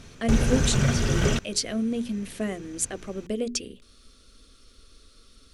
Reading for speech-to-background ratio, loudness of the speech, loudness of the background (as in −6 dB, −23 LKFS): −4.5 dB, −29.5 LKFS, −25.0 LKFS